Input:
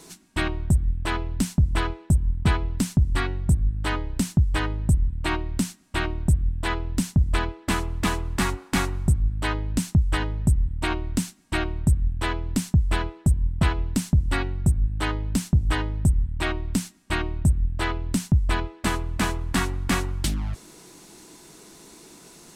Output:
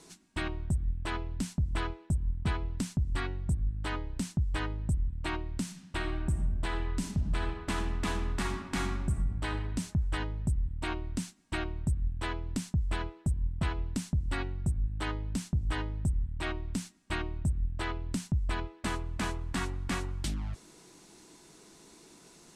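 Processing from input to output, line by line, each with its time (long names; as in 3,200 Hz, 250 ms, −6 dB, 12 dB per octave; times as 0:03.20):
0:05.61–0:09.48: thrown reverb, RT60 1.3 s, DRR 6 dB
whole clip: low-pass filter 10,000 Hz 12 dB per octave; brickwall limiter −14.5 dBFS; level −7.5 dB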